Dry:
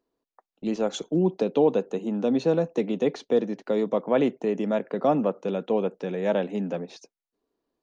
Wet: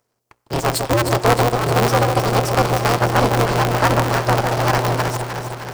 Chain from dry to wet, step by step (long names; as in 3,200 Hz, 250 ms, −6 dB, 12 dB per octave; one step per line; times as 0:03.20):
gliding playback speed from 123% → 150%
on a send at −21.5 dB: convolution reverb, pre-delay 4 ms
on the sum: half-wave rectification
bass and treble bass −6 dB, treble +8 dB
mains-hum notches 60/120/180/240/300/360/420/480 Hz
delay that swaps between a low-pass and a high-pass 154 ms, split 890 Hz, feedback 80%, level −6 dB
in parallel at 0 dB: brickwall limiter −19 dBFS, peak gain reduction 8.5 dB
on the sum: notch filter 3,600 Hz, Q 8.1
ring modulator with a square carrier 120 Hz
level +6 dB